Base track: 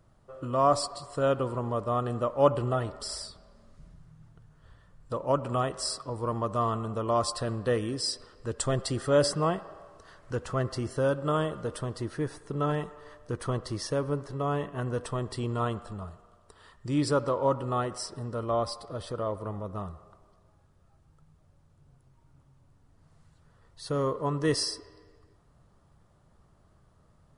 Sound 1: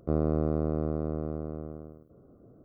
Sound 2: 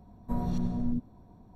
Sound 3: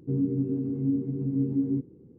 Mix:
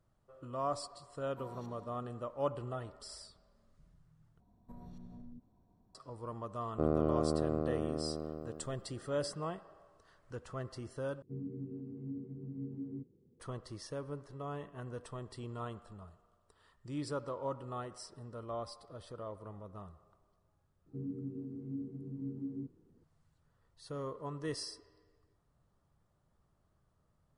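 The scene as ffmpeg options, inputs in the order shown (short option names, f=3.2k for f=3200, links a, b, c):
-filter_complex "[2:a]asplit=2[a][b];[3:a]asplit=2[c][d];[0:a]volume=-12.5dB[e];[a]highpass=450[f];[b]acompressor=threshold=-36dB:ratio=3:attack=32:release=66:knee=1:detection=rms[g];[1:a]equalizer=f=64:w=0.34:g=-9[h];[c]bandreject=f=300:w=7.5[i];[e]asplit=3[j][k][l];[j]atrim=end=4.404[m];[g]atrim=end=1.55,asetpts=PTS-STARTPTS,volume=-15dB[n];[k]atrim=start=5.946:end=11.224[o];[i]atrim=end=2.18,asetpts=PTS-STARTPTS,volume=-14.5dB[p];[l]atrim=start=13.396[q];[f]atrim=end=1.55,asetpts=PTS-STARTPTS,volume=-11dB,afade=t=in:d=0.004:c=hsin,afade=t=out:st=1.546:d=0.004:c=hsin,adelay=1080[r];[h]atrim=end=2.64,asetpts=PTS-STARTPTS,volume=-0.5dB,afade=t=in:d=0.004:c=hsin,afade=t=out:st=2.636:d=0.004:c=hsin,adelay=6710[s];[d]atrim=end=2.18,asetpts=PTS-STARTPTS,volume=-14.5dB,afade=t=in:d=0.004:c=hsin,afade=t=out:st=2.176:d=0.004:c=hsin,adelay=20860[t];[m][n]acrossfade=d=0.004:c1=hsin:c2=hsin[u];[u][o]acrossfade=d=0.004:c1=hsin:c2=hsin[v];[v][p]acrossfade=d=0.004:c1=hsin:c2=hsin[w];[w][q]acrossfade=d=0.004:c1=hsin:c2=hsin[x];[x][r][s][t]amix=inputs=4:normalize=0"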